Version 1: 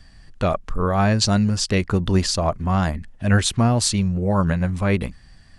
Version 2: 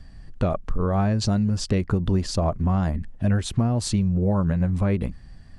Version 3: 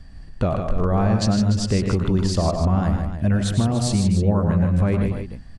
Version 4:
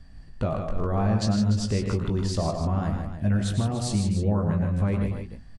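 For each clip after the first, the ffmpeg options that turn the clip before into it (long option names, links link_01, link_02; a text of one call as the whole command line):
ffmpeg -i in.wav -af "tiltshelf=frequency=910:gain=5.5,acompressor=threshold=-17dB:ratio=6,volume=-1dB" out.wav
ffmpeg -i in.wav -af "aecho=1:1:98|113|154|294:0.251|0.316|0.473|0.299,volume=1.5dB" out.wav
ffmpeg -i in.wav -filter_complex "[0:a]asplit=2[link_01][link_02];[link_02]adelay=19,volume=-8dB[link_03];[link_01][link_03]amix=inputs=2:normalize=0,volume=-6dB" out.wav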